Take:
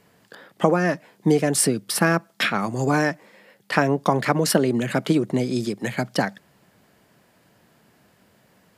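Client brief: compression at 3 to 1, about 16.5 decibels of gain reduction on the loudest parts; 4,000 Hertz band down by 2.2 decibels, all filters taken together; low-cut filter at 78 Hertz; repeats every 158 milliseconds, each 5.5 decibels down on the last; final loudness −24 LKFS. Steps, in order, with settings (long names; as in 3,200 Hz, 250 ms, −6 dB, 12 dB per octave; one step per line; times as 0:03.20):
high-pass filter 78 Hz
parametric band 4,000 Hz −3 dB
downward compressor 3 to 1, threshold −37 dBFS
repeating echo 158 ms, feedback 53%, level −5.5 dB
level +11.5 dB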